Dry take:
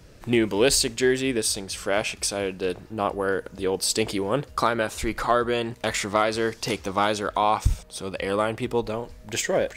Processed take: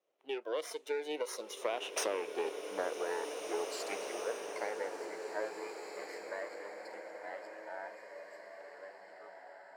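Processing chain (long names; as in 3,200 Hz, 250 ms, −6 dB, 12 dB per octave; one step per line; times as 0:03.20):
lower of the sound and its delayed copy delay 0.37 ms
source passing by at 0:02.10, 40 m/s, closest 4.2 metres
low-pass filter 1,200 Hz 6 dB per octave
noise reduction from a noise print of the clip's start 13 dB
high-pass filter 430 Hz 24 dB per octave
downward compressor 16 to 1, threshold −49 dBFS, peak gain reduction 21.5 dB
slow-attack reverb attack 2,210 ms, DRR 3.5 dB
level +17 dB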